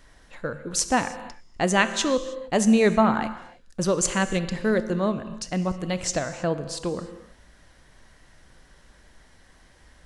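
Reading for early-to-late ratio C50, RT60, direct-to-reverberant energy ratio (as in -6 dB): 12.0 dB, no single decay rate, 10.5 dB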